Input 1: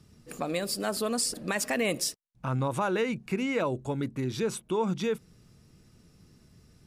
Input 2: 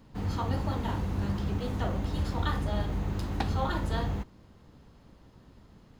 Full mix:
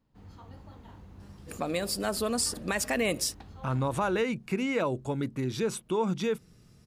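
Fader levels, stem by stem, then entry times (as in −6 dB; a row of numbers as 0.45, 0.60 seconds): 0.0, −18.5 decibels; 1.20, 0.00 seconds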